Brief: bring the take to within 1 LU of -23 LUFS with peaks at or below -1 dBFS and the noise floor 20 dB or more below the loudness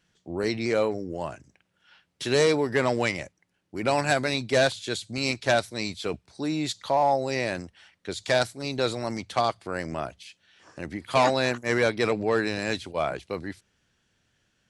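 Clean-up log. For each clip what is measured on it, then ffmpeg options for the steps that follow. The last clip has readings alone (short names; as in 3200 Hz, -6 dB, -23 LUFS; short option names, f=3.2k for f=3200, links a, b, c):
loudness -26.5 LUFS; peak -9.0 dBFS; loudness target -23.0 LUFS
-> -af "volume=3.5dB"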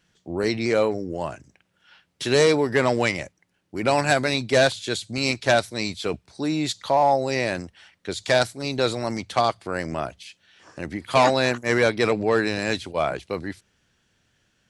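loudness -23.0 LUFS; peak -5.5 dBFS; noise floor -70 dBFS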